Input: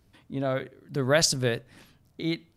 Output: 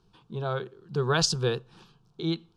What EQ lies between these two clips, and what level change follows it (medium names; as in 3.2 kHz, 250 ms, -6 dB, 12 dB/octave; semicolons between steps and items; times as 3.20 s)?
low-pass 2.8 kHz 12 dB/octave; treble shelf 2.2 kHz +11 dB; static phaser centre 400 Hz, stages 8; +2.5 dB